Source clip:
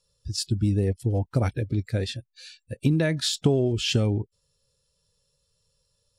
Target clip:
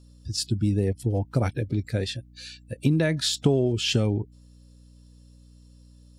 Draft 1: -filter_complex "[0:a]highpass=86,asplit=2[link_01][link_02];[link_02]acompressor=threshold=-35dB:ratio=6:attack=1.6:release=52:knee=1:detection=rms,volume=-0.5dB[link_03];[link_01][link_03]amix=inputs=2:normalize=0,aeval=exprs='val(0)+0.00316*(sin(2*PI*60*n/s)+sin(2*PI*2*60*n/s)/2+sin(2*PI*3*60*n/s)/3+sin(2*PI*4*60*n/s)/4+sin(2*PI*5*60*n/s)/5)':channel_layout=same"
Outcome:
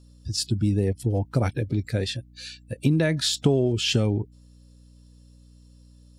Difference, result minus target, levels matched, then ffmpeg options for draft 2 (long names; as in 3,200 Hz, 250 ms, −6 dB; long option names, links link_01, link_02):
downward compressor: peak gain reduction −9 dB
-filter_complex "[0:a]highpass=86,asplit=2[link_01][link_02];[link_02]acompressor=threshold=-46dB:ratio=6:attack=1.6:release=52:knee=1:detection=rms,volume=-0.5dB[link_03];[link_01][link_03]amix=inputs=2:normalize=0,aeval=exprs='val(0)+0.00316*(sin(2*PI*60*n/s)+sin(2*PI*2*60*n/s)/2+sin(2*PI*3*60*n/s)/3+sin(2*PI*4*60*n/s)/4+sin(2*PI*5*60*n/s)/5)':channel_layout=same"